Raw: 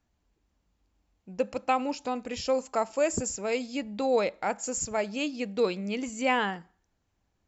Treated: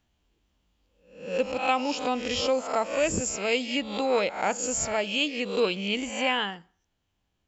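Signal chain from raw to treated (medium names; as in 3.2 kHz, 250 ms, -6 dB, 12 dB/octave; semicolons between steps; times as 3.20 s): reverse spectral sustain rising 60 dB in 0.53 s; peaking EQ 3.1 kHz +10 dB 0.54 oct; gain riding 0.5 s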